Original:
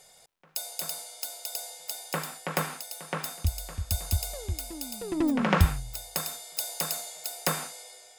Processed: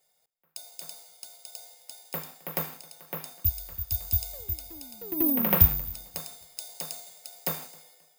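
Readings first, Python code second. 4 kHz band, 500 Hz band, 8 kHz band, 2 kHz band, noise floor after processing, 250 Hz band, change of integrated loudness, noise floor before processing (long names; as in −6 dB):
−6.5 dB, −4.0 dB, −7.0 dB, −8.0 dB, −71 dBFS, −3.0 dB, +4.0 dB, −57 dBFS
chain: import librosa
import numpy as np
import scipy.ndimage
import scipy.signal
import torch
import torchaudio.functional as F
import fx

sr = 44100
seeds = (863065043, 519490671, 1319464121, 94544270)

p1 = fx.dynamic_eq(x, sr, hz=1400.0, q=1.4, threshold_db=-48.0, ratio=4.0, max_db=-7)
p2 = p1 + fx.echo_feedback(p1, sr, ms=266, feedback_pct=43, wet_db=-21, dry=0)
p3 = (np.kron(scipy.signal.resample_poly(p2, 1, 3), np.eye(3)[0]) * 3)[:len(p2)]
p4 = fx.band_widen(p3, sr, depth_pct=40)
y = p4 * librosa.db_to_amplitude(-6.0)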